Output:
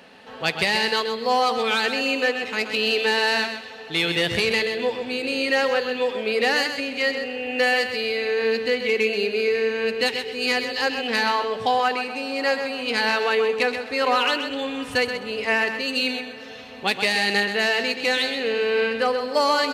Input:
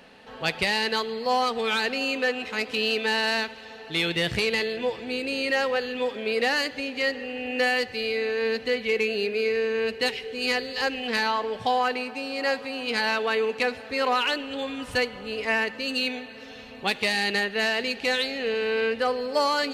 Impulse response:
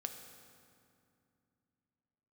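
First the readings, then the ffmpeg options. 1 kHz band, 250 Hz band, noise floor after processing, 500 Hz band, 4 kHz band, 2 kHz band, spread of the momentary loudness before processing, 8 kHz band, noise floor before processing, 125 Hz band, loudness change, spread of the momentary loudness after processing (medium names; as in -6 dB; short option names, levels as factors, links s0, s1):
+3.5 dB, +2.5 dB, -39 dBFS, +3.5 dB, +3.5 dB, +3.5 dB, 6 LU, +3.5 dB, -42 dBFS, +1.5 dB, +3.5 dB, 6 LU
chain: -af "highpass=65,lowshelf=f=140:g=-4,aecho=1:1:129|258|387:0.398|0.0916|0.0211,volume=1.41"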